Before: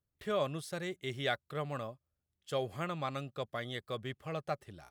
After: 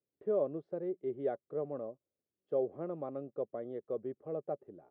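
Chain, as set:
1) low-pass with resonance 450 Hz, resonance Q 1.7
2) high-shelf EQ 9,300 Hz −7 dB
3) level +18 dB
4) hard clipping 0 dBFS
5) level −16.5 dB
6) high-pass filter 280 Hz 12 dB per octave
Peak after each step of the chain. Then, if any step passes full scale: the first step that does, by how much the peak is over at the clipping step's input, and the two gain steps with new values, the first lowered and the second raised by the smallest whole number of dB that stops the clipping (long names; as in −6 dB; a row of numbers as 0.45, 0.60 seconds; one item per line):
−23.0, −23.0, −5.0, −5.0, −21.5, −22.0 dBFS
no step passes full scale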